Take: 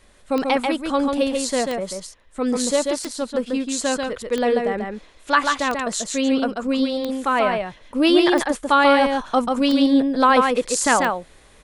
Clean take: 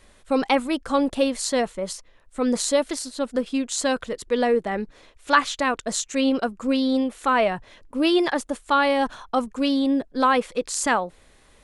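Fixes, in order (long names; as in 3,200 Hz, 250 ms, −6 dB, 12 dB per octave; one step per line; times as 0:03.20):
click removal
echo removal 139 ms −4 dB
level correction −3.5 dB, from 0:07.90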